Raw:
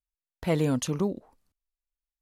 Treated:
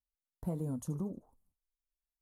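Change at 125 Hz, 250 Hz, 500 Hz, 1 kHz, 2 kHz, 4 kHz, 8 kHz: −8.0 dB, −10.0 dB, −15.5 dB, −15.5 dB, below −25 dB, below −25 dB, −15.0 dB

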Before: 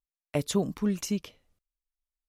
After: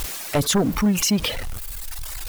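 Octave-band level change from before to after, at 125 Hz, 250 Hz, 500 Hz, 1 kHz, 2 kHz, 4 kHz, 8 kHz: +8.5, +8.5, +6.5, +13.0, +15.5, +15.5, +14.0 decibels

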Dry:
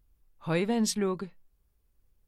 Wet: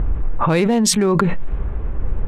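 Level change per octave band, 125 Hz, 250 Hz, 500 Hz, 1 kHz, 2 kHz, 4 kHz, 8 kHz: +16.0, +12.5, +12.0, +16.5, +12.0, +13.0, +14.5 decibels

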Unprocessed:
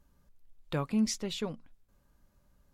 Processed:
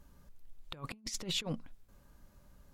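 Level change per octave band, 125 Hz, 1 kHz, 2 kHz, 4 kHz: −6.0, −7.0, −0.5, +2.0 decibels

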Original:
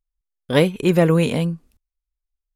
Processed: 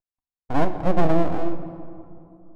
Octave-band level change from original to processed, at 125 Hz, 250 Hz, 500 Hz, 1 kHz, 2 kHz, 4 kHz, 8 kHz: −8.0 dB, −5.5 dB, −6.0 dB, +4.0 dB, −8.5 dB, −16.0 dB, below −15 dB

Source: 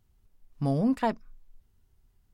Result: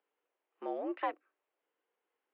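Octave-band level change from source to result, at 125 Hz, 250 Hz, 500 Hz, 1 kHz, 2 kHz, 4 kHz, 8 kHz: below −40 dB, −15.0 dB, −6.5 dB, −5.0 dB, −4.5 dB, −9.5 dB, can't be measured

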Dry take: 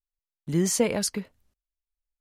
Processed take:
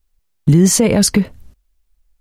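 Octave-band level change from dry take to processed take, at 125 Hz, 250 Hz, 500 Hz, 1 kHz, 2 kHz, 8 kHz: +17.0, +14.5, +9.5, +8.5, +10.0, +11.5 decibels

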